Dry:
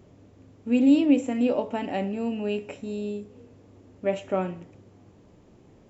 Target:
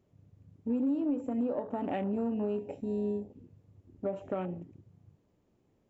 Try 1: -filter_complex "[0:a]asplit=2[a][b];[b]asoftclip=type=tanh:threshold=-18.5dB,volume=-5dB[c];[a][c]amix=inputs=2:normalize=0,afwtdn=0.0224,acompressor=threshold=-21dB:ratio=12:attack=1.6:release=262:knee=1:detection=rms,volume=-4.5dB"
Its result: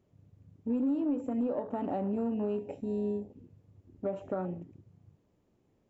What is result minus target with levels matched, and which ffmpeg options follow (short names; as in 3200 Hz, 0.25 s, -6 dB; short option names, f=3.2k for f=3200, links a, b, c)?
soft clip: distortion +8 dB
-filter_complex "[0:a]asplit=2[a][b];[b]asoftclip=type=tanh:threshold=-12.5dB,volume=-5dB[c];[a][c]amix=inputs=2:normalize=0,afwtdn=0.0224,acompressor=threshold=-21dB:ratio=12:attack=1.6:release=262:knee=1:detection=rms,volume=-4.5dB"